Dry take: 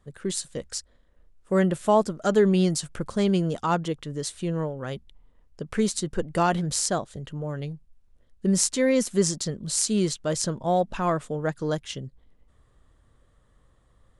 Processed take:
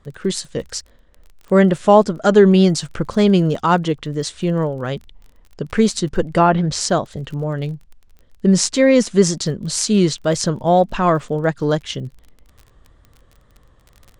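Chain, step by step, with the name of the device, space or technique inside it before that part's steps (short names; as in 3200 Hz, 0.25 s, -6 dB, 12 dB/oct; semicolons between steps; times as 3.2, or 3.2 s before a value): lo-fi chain (LPF 5900 Hz 12 dB/oct; wow and flutter; crackle 31/s -42 dBFS); 6.26–6.81 treble ducked by the level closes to 1900 Hz, closed at -17.5 dBFS; gain +9 dB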